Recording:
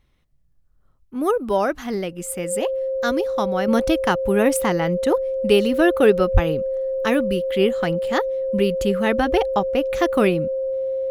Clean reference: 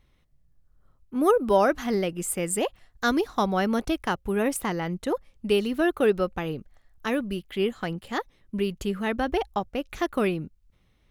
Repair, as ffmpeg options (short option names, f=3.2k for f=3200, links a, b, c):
-filter_complex "[0:a]bandreject=f=530:w=30,asplit=3[a][b][c];[a]afade=t=out:st=6.33:d=0.02[d];[b]highpass=f=140:w=0.5412,highpass=f=140:w=1.3066,afade=t=in:st=6.33:d=0.02,afade=t=out:st=6.45:d=0.02[e];[c]afade=t=in:st=6.45:d=0.02[f];[d][e][f]amix=inputs=3:normalize=0,asetnsamples=n=441:p=0,asendcmd='3.68 volume volume -6.5dB',volume=0dB"